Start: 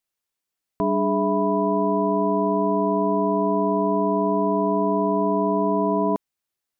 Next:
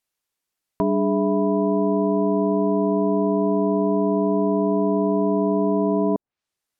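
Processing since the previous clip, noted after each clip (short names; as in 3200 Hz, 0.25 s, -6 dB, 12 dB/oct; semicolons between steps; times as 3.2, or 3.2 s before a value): treble ducked by the level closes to 660 Hz, closed at -21.5 dBFS; gain +2.5 dB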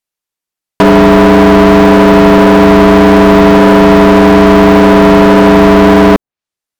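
sample leveller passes 5; gain +8.5 dB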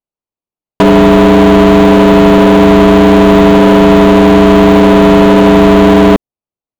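Wiener smoothing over 25 samples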